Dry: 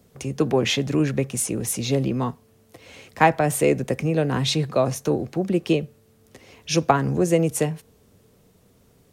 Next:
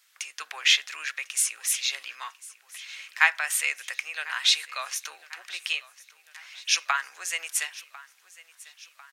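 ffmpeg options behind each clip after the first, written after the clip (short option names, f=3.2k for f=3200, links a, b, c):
-af "highpass=f=1.5k:w=0.5412,highpass=f=1.5k:w=1.3066,highshelf=f=7k:g=-7.5,aecho=1:1:1048|2096|3144|4192:0.1|0.054|0.0292|0.0157,volume=6dB"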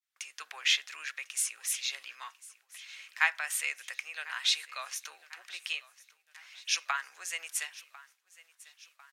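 -af "agate=range=-33dB:threshold=-51dB:ratio=3:detection=peak,volume=-6.5dB"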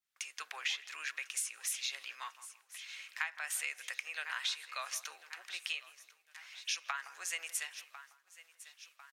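-filter_complex "[0:a]acompressor=threshold=-33dB:ratio=10,asplit=2[a][b];[b]adelay=165,lowpass=f=950:p=1,volume=-12dB,asplit=2[c][d];[d]adelay=165,lowpass=f=950:p=1,volume=0.39,asplit=2[e][f];[f]adelay=165,lowpass=f=950:p=1,volume=0.39,asplit=2[g][h];[h]adelay=165,lowpass=f=950:p=1,volume=0.39[i];[a][c][e][g][i]amix=inputs=5:normalize=0"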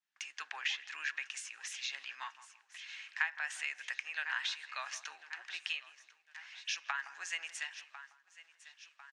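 -af "highpass=140,equalizer=f=160:t=q:w=4:g=6,equalizer=f=270:t=q:w=4:g=7,equalizer=f=500:t=q:w=4:g=-6,equalizer=f=870:t=q:w=4:g=7,equalizer=f=1.7k:t=q:w=4:g=9,equalizer=f=2.8k:t=q:w=4:g=4,lowpass=f=7.1k:w=0.5412,lowpass=f=7.1k:w=1.3066,volume=-3dB"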